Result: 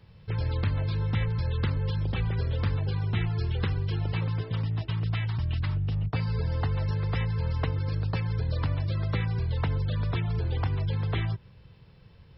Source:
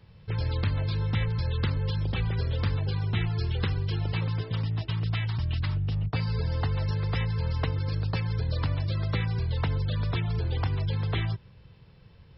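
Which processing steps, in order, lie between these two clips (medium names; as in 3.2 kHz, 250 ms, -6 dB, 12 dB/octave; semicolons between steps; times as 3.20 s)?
dynamic bell 5 kHz, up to -5 dB, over -52 dBFS, Q 0.85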